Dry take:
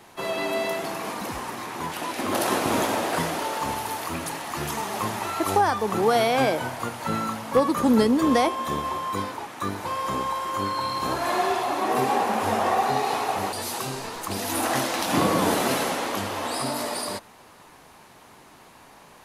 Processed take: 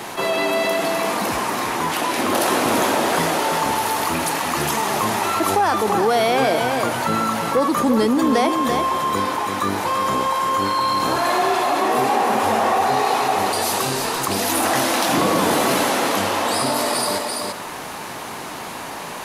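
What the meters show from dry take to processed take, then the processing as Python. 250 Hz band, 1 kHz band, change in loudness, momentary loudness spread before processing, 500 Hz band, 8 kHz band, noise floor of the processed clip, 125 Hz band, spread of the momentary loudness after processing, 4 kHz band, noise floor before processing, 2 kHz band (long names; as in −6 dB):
+4.0 dB, +6.5 dB, +6.0 dB, 10 LU, +5.5 dB, +7.5 dB, −31 dBFS, +3.0 dB, 5 LU, +7.5 dB, −50 dBFS, +7.0 dB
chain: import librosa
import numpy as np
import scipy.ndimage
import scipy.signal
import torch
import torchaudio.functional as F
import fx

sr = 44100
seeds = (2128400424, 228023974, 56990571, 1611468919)

p1 = np.clip(10.0 ** (19.5 / 20.0) * x, -1.0, 1.0) / 10.0 ** (19.5 / 20.0)
p2 = x + (p1 * 10.0 ** (-8.0 / 20.0))
p3 = fx.low_shelf(p2, sr, hz=97.0, db=-11.0)
p4 = p3 + 10.0 ** (-8.0 / 20.0) * np.pad(p3, (int(336 * sr / 1000.0), 0))[:len(p3)]
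p5 = fx.env_flatten(p4, sr, amount_pct=50)
y = p5 * 10.0 ** (-1.0 / 20.0)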